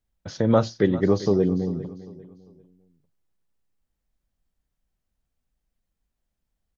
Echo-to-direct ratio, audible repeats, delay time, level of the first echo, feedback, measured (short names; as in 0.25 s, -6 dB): -15.5 dB, 2, 0.398 s, -16.0 dB, 33%